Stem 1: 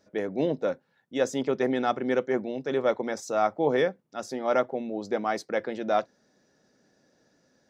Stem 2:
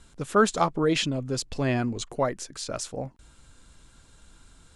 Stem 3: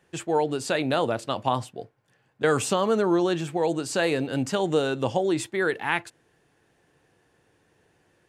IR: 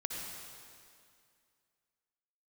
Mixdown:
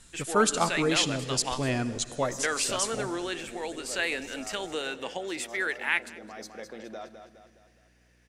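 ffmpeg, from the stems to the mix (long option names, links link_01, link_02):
-filter_complex "[0:a]alimiter=limit=-21.5dB:level=0:latency=1:release=21,adelay=1050,volume=-11.5dB,asplit=3[link_01][link_02][link_03];[link_02]volume=-16.5dB[link_04];[link_03]volume=-7.5dB[link_05];[1:a]volume=-5.5dB,asplit=2[link_06][link_07];[link_07]volume=-11.5dB[link_08];[2:a]highpass=frequency=210:width=0.5412,highpass=frequency=210:width=1.3066,equalizer=frequency=2100:width=1.1:gain=13,aeval=exprs='val(0)+0.00282*(sin(2*PI*60*n/s)+sin(2*PI*2*60*n/s)/2+sin(2*PI*3*60*n/s)/3+sin(2*PI*4*60*n/s)/4+sin(2*PI*5*60*n/s)/5)':channel_layout=same,volume=-12.5dB,asplit=3[link_09][link_10][link_11];[link_10]volume=-21.5dB[link_12];[link_11]apad=whole_len=385643[link_13];[link_01][link_13]sidechaincompress=threshold=-39dB:ratio=8:attack=6.6:release=343[link_14];[3:a]atrim=start_sample=2205[link_15];[link_04][link_08]amix=inputs=2:normalize=0[link_16];[link_16][link_15]afir=irnorm=-1:irlink=0[link_17];[link_05][link_12]amix=inputs=2:normalize=0,aecho=0:1:207|414|621|828|1035|1242:1|0.46|0.212|0.0973|0.0448|0.0206[link_18];[link_14][link_06][link_09][link_17][link_18]amix=inputs=5:normalize=0,highshelf=frequency=3800:gain=12"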